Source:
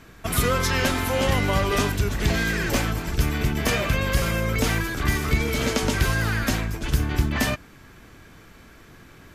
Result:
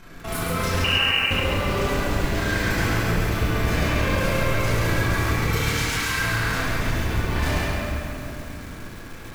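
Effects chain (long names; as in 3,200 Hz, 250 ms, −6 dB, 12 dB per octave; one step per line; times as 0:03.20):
0:05.49–0:06.19: high-pass filter 1,100 Hz 24 dB per octave
compressor whose output falls as the input rises −24 dBFS, ratio −0.5
amplitude modulation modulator 28 Hz, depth 90%
soft clipping −28.5 dBFS, distortion −8 dB
delay that swaps between a low-pass and a high-pass 206 ms, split 2,200 Hz, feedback 61%, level −12 dB
convolution reverb RT60 2.6 s, pre-delay 5 ms, DRR −8.5 dB
0:00.84–0:01.31: voice inversion scrambler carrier 2,900 Hz
feedback echo at a low word length 135 ms, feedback 55%, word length 7 bits, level −3 dB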